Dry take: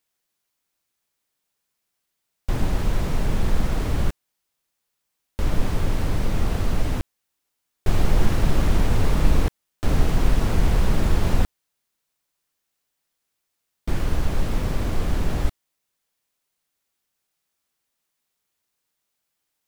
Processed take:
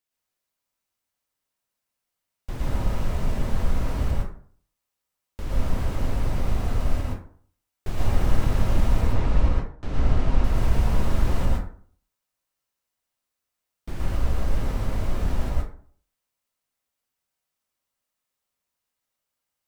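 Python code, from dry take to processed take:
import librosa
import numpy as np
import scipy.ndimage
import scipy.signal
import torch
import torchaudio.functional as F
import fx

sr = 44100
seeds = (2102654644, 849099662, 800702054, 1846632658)

y = fx.air_absorb(x, sr, metres=89.0, at=(9.01, 10.44))
y = fx.rev_plate(y, sr, seeds[0], rt60_s=0.51, hf_ratio=0.5, predelay_ms=100, drr_db=-4.0)
y = F.gain(torch.from_numpy(y), -9.0).numpy()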